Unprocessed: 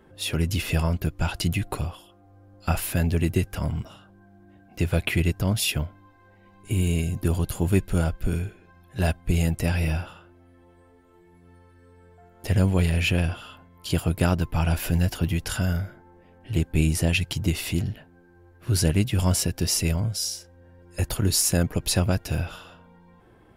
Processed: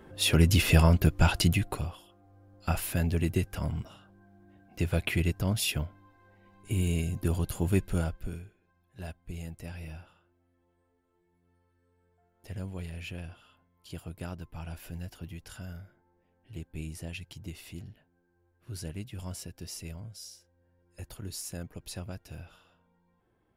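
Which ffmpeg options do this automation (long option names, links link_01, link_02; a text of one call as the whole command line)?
ffmpeg -i in.wav -af "volume=3dB,afade=type=out:start_time=1.27:duration=0.49:silence=0.398107,afade=type=out:start_time=7.89:duration=0.56:silence=0.237137" out.wav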